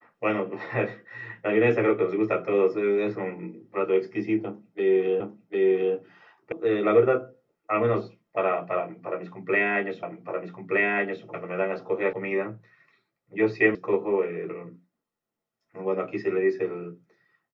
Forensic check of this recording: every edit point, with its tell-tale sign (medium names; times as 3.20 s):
5.20 s: repeat of the last 0.75 s
6.52 s: sound stops dead
10.03 s: repeat of the last 1.22 s
12.13 s: sound stops dead
13.75 s: sound stops dead